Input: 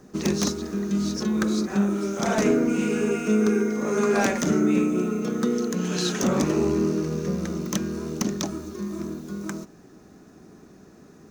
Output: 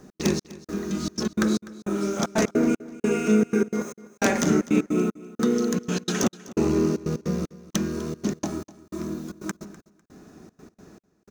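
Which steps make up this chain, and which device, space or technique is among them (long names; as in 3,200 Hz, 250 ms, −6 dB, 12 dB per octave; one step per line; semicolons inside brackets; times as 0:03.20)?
hum removal 66.77 Hz, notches 34
0:03.82–0:04.22: first-order pre-emphasis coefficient 0.8
trance gate with a delay (gate pattern "x.xx...xxxx." 153 BPM −60 dB; repeating echo 250 ms, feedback 22%, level −19 dB)
level +2 dB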